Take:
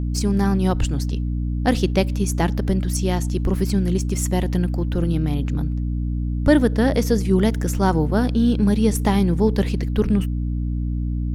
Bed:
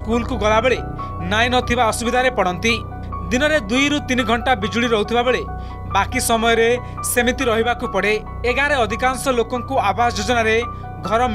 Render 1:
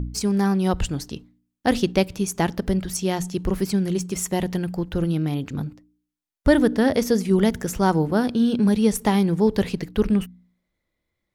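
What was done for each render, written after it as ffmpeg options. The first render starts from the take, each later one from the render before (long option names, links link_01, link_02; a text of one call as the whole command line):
ffmpeg -i in.wav -af "bandreject=frequency=60:width_type=h:width=4,bandreject=frequency=120:width_type=h:width=4,bandreject=frequency=180:width_type=h:width=4,bandreject=frequency=240:width_type=h:width=4,bandreject=frequency=300:width_type=h:width=4" out.wav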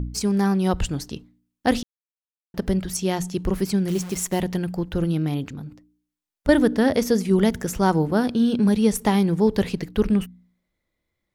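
ffmpeg -i in.wav -filter_complex "[0:a]asettb=1/sr,asplit=3[link_01][link_02][link_03];[link_01]atrim=end=3.884[link_04];[link_02]atrim=start=3.88:end=4.4,asetpts=PTS-STARTPTS,afade=type=in:duration=0.004:curve=qsin,afade=type=out:start_time=0.516:duration=0.004:curve=qsin,acrusher=bits=7:dc=4:mix=0:aa=0.000001[link_05];[link_03]atrim=start=4.396[link_06];[link_04][link_05]acrossfade=duration=0.004:curve1=hsin:curve2=qsin[link_07];[link_07][link_06]acrossfade=duration=0.004:curve1=qsin:curve2=hsin,asettb=1/sr,asplit=3[link_08][link_09][link_10];[link_08]atrim=end=5.484[link_11];[link_09]atrim=start=5.48:end=6.49,asetpts=PTS-STARTPTS,afade=type=in:duration=0.004:curve=qsin,afade=type=out:start_time=1.006:duration=0.004:curve=qsin,acompressor=threshold=-34dB:ratio=2.5:attack=3.2:release=140:knee=1:detection=peak[link_12];[link_10]atrim=start=6.486[link_13];[link_11][link_12]acrossfade=duration=0.004:curve1=hsin:curve2=qsin[link_14];[link_14][link_13]acrossfade=duration=0.004:curve1=qsin:curve2=hsin,asplit=3[link_15][link_16][link_17];[link_15]atrim=end=1.83,asetpts=PTS-STARTPTS,afade=type=out:start_time=1.826:duration=0.004:curve=hsin[link_18];[link_16]atrim=start=1.83:end=2.54,asetpts=PTS-STARTPTS,volume=0[link_19];[link_17]atrim=start=2.54,asetpts=PTS-STARTPTS,afade=type=in:duration=0.004:curve=hsin[link_20];[link_18][link_19][link_20]concat=n=3:v=0:a=1" out.wav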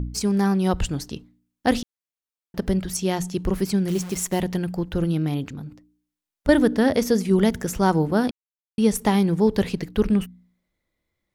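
ffmpeg -i in.wav -filter_complex "[0:a]asplit=3[link_01][link_02][link_03];[link_01]atrim=end=8.31,asetpts=PTS-STARTPTS,afade=type=out:start_time=8.306:duration=0.004:curve=hsin[link_04];[link_02]atrim=start=8.31:end=8.78,asetpts=PTS-STARTPTS,volume=0[link_05];[link_03]atrim=start=8.78,asetpts=PTS-STARTPTS,afade=type=in:duration=0.004:curve=hsin[link_06];[link_04][link_05][link_06]concat=n=3:v=0:a=1" out.wav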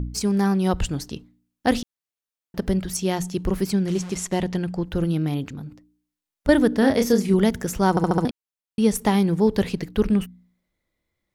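ffmpeg -i in.wav -filter_complex "[0:a]asettb=1/sr,asplit=3[link_01][link_02][link_03];[link_01]atrim=end=3.744[link_04];[link_02]atrim=start=3.74:end=4.84,asetpts=PTS-STARTPTS,afade=type=in:duration=0.004:curve=qsin,afade=type=out:start_time=1.096:duration=0.004:curve=qsin,lowpass=8000[link_05];[link_03]atrim=start=4.836[link_06];[link_04][link_05]acrossfade=duration=0.004:curve1=hsin:curve2=qsin[link_07];[link_07][link_06]acrossfade=duration=0.004:curve1=qsin:curve2=hsin,asettb=1/sr,asplit=3[link_08][link_09][link_10];[link_08]atrim=end=6.794[link_11];[link_09]atrim=start=6.79:end=7.34,asetpts=PTS-STARTPTS,afade=type=in:duration=0.004:curve=qsin,afade=type=out:start_time=0.546:duration=0.004:curve=qsin,asplit=2[link_12][link_13];[link_13]adelay=30,volume=-6dB[link_14];[link_12][link_14]amix=inputs=2:normalize=0,atrim=end_sample=24255[link_15];[link_10]atrim=start=7.336[link_16];[link_11][link_15]acrossfade=duration=0.004:curve1=hsin:curve2=qsin[link_17];[link_17][link_16]acrossfade=duration=0.004:curve1=qsin:curve2=hsin,asplit=6[link_18][link_19][link_20][link_21][link_22][link_23];[link_18]atrim=end=7.972[link_24];[link_19]atrim=start=7.898:end=7.972[link_25];[link_20]atrim=start=7.898:end=7.972[link_26];[link_21]atrim=start=7.898:end=7.972[link_27];[link_22]atrim=start=7.898:end=7.972[link_28];[link_23]atrim=start=8.248[link_29];[link_24][link_25]acrossfade=duration=0.004:curve1=hsin:curve2=hsin[link_30];[link_30][link_26]acrossfade=duration=0.004:curve1=hsin:curve2=hsin[link_31];[link_31][link_27]acrossfade=duration=0.004:curve1=hsin:curve2=hsin[link_32];[link_32][link_28]acrossfade=duration=0.004:curve1=hsin:curve2=hsin[link_33];[link_33][link_29]acrossfade=duration=0.004:curve1=hsin:curve2=hsin" out.wav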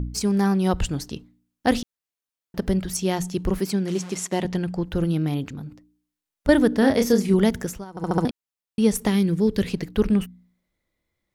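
ffmpeg -i in.wav -filter_complex "[0:a]asettb=1/sr,asplit=3[link_01][link_02][link_03];[link_01]atrim=end=3.594[link_04];[link_02]atrim=start=3.59:end=4.45,asetpts=PTS-STARTPTS,afade=type=in:duration=0.004:curve=qsin,afade=type=out:start_time=0.856:duration=0.004:curve=qsin,highpass=180[link_05];[link_03]atrim=start=4.446[link_06];[link_04][link_05]acrossfade=duration=0.004:curve1=hsin:curve2=qsin[link_07];[link_07][link_06]acrossfade=duration=0.004:curve1=qsin:curve2=hsin,asettb=1/sr,asplit=3[link_08][link_09][link_10];[link_08]atrim=end=9.074[link_11];[link_09]atrim=start=9.07:end=9.68,asetpts=PTS-STARTPTS,afade=type=in:duration=0.004:curve=qsin,afade=type=out:start_time=0.606:duration=0.004:curve=qsin,equalizer=frequency=820:width_type=o:width=0.98:gain=-12.5[link_12];[link_10]atrim=start=9.676[link_13];[link_11][link_12]acrossfade=duration=0.004:curve1=hsin:curve2=qsin[link_14];[link_14][link_13]acrossfade=duration=0.004:curve1=qsin:curve2=hsin,asplit=3[link_15][link_16][link_17];[link_15]atrim=end=7.85,asetpts=PTS-STARTPTS,afade=type=out:start_time=7.61:duration=0.24:silence=0.0794328[link_18];[link_16]atrim=start=7.85:end=7.94,asetpts=PTS-STARTPTS,volume=-22dB[link_19];[link_17]atrim=start=7.94,asetpts=PTS-STARTPTS,afade=type=in:duration=0.24:silence=0.0794328[link_20];[link_18][link_19][link_20]concat=n=3:v=0:a=1" out.wav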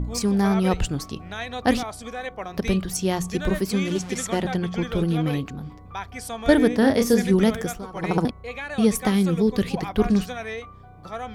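ffmpeg -i in.wav -i bed.wav -filter_complex "[1:a]volume=-16dB[link_01];[0:a][link_01]amix=inputs=2:normalize=0" out.wav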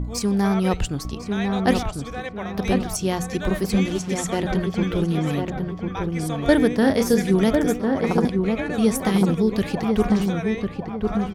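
ffmpeg -i in.wav -filter_complex "[0:a]asplit=2[link_01][link_02];[link_02]adelay=1050,lowpass=frequency=1400:poles=1,volume=-3.5dB,asplit=2[link_03][link_04];[link_04]adelay=1050,lowpass=frequency=1400:poles=1,volume=0.36,asplit=2[link_05][link_06];[link_06]adelay=1050,lowpass=frequency=1400:poles=1,volume=0.36,asplit=2[link_07][link_08];[link_08]adelay=1050,lowpass=frequency=1400:poles=1,volume=0.36,asplit=2[link_09][link_10];[link_10]adelay=1050,lowpass=frequency=1400:poles=1,volume=0.36[link_11];[link_01][link_03][link_05][link_07][link_09][link_11]amix=inputs=6:normalize=0" out.wav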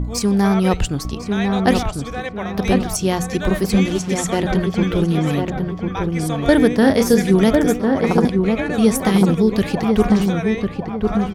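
ffmpeg -i in.wav -af "volume=4.5dB,alimiter=limit=-1dB:level=0:latency=1" out.wav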